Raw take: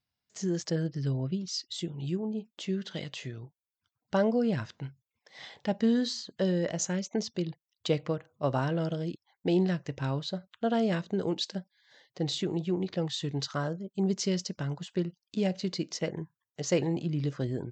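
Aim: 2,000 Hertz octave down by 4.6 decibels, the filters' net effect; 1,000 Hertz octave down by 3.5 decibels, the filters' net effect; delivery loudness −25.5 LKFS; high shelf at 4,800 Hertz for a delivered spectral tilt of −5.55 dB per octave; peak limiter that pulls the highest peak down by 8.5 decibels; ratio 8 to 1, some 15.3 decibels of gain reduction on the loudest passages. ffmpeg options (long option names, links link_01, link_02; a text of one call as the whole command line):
ffmpeg -i in.wav -af "equalizer=frequency=1000:width_type=o:gain=-4,equalizer=frequency=2000:width_type=o:gain=-3.5,highshelf=frequency=4800:gain=-7,acompressor=threshold=-38dB:ratio=8,volume=19dB,alimiter=limit=-15.5dB:level=0:latency=1" out.wav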